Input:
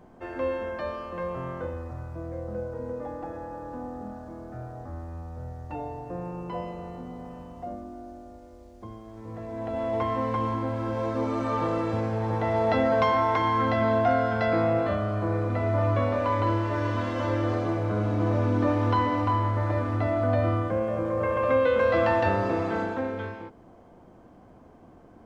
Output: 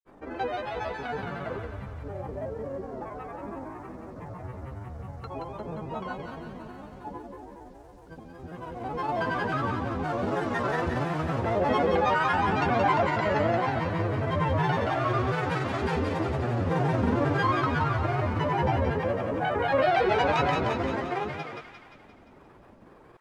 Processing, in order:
granular cloud, pitch spread up and down by 7 semitones
delay with a high-pass on its return 190 ms, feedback 56%, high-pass 1,400 Hz, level −3.5 dB
wrong playback speed 44.1 kHz file played as 48 kHz

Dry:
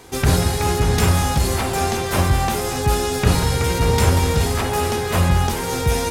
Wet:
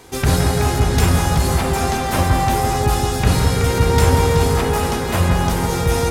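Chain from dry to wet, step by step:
bucket-brigade delay 167 ms, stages 2,048, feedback 70%, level −4.5 dB

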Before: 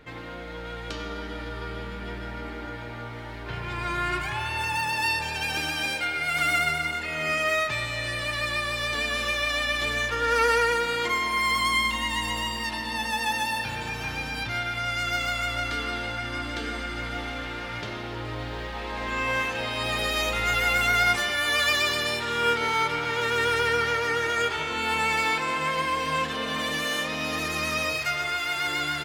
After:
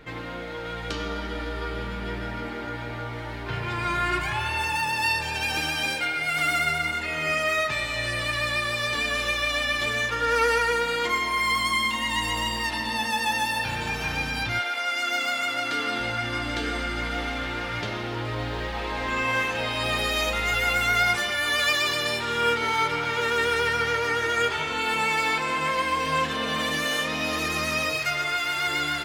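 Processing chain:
0:14.58–0:15.99: high-pass filter 400 Hz → 130 Hz 24 dB per octave
in parallel at −1 dB: speech leveller within 4 dB 0.5 s
on the sum: flanger 0.32 Hz, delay 5.9 ms, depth 7.3 ms, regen −62%

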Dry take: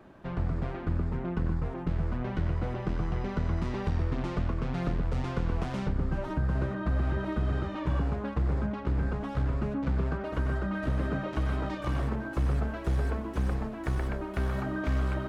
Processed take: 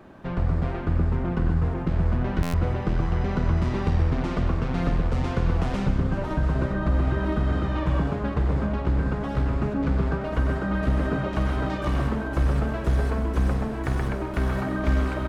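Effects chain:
multi-tap delay 50/102/134/209/690/846 ms −12.5/−20/−10.5/−19/−12/−16 dB
pitch-shifted copies added −7 semitones −14 dB
buffer that repeats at 0:02.42, samples 512, times 9
level +5 dB

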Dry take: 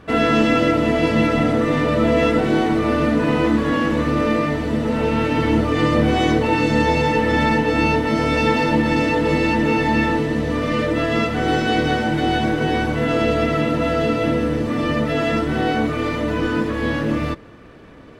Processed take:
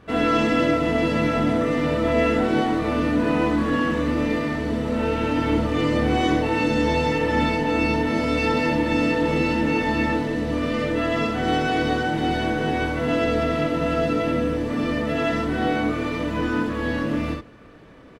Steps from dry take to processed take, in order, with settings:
ambience of single reflections 24 ms −5 dB, 65 ms −4 dB
level −6 dB

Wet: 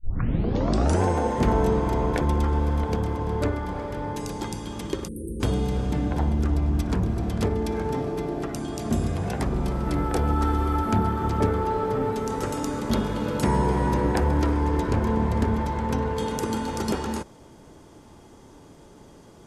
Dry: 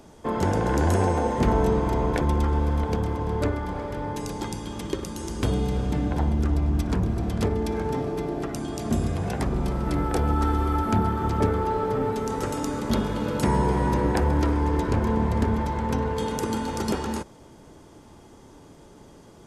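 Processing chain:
turntable start at the beginning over 1.03 s
time-frequency box erased 0:05.08–0:05.40, 550–8,300 Hz

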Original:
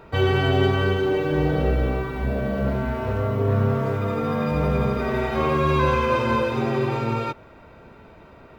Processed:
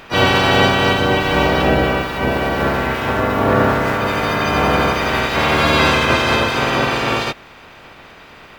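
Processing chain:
ceiling on every frequency bin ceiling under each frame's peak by 20 dB
pitch-shifted copies added +4 semitones −5 dB
level +5 dB

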